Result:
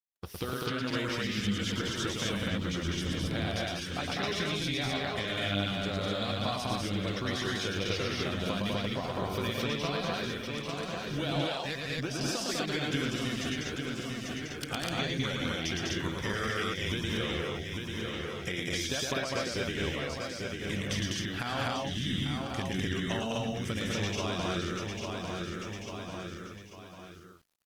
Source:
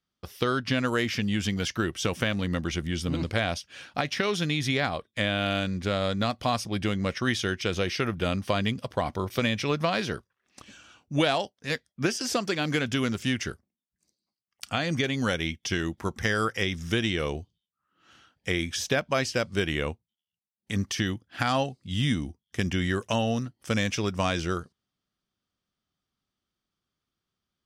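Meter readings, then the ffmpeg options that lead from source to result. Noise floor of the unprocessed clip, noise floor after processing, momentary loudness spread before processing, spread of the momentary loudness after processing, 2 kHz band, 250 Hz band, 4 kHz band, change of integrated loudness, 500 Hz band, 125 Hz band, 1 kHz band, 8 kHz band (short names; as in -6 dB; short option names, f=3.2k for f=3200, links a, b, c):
under -85 dBFS, -46 dBFS, 6 LU, 5 LU, -4.5 dB, -4.5 dB, -1.5 dB, -4.5 dB, -4.5 dB, -4.0 dB, -5.0 dB, -2.0 dB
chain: -filter_complex "[0:a]asplit=2[a][b];[b]aecho=0:1:845|1690|2535:0.251|0.0829|0.0274[c];[a][c]amix=inputs=2:normalize=0,adynamicequalizer=threshold=0.00447:dfrequency=3700:dqfactor=3.2:tfrequency=3700:tqfactor=3.2:attack=5:release=100:ratio=0.375:range=2.5:mode=boostabove:tftype=bell,acompressor=threshold=-45dB:ratio=3,asplit=2[d][e];[e]aecho=0:1:110.8|201.2|250.7:0.708|0.794|0.891[f];[d][f]amix=inputs=2:normalize=0,acrusher=bits=11:mix=0:aa=0.000001,volume=6dB" -ar 48000 -c:a libopus -b:a 20k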